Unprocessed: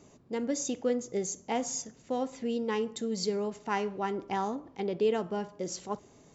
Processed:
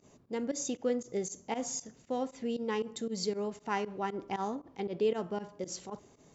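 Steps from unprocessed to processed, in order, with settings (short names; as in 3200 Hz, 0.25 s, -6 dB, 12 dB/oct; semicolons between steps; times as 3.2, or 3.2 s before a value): pump 117 bpm, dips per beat 2, -19 dB, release 77 ms; gain -2 dB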